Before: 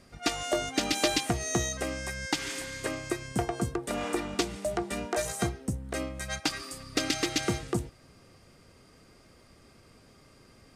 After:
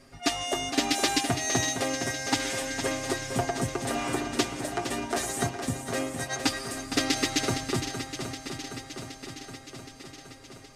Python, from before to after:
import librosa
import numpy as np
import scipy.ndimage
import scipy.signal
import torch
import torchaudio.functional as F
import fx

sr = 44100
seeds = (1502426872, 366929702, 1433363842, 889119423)

p1 = fx.peak_eq(x, sr, hz=140.0, db=-8.0, octaves=0.28)
p2 = p1 + 0.87 * np.pad(p1, (int(7.4 * sr / 1000.0), 0))[:len(p1)]
y = p2 + fx.echo_swing(p2, sr, ms=770, ratio=1.5, feedback_pct=61, wet_db=-9.0, dry=0)